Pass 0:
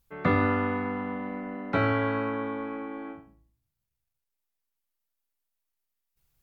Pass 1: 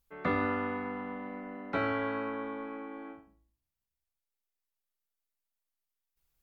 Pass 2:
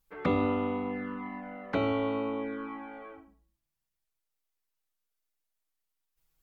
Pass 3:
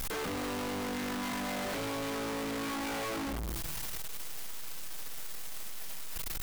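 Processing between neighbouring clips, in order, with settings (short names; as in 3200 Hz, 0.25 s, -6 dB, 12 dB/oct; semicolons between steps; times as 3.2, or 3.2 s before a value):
bell 120 Hz -10 dB 1 oct; gain -5 dB
envelope flanger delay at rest 6.4 ms, full sweep at -32.5 dBFS; gain +5 dB
infinite clipping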